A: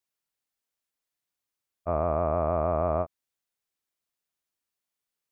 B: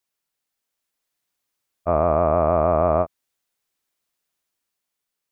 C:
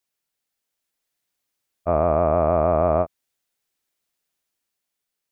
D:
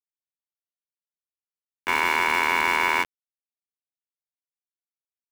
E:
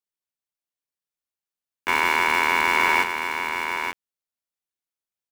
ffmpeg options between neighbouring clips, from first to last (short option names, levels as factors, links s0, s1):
-af "equalizer=f=82:w=1.1:g=-3,dynaudnorm=f=200:g=9:m=1.41,volume=1.78"
-af "equalizer=f=1100:w=2.5:g=-3"
-af "aeval=exprs='val(0)*gte(abs(val(0)),0.075)':c=same,aeval=exprs='val(0)*sin(2*PI*1600*n/s)':c=same"
-af "aecho=1:1:881:0.473,volume=1.19"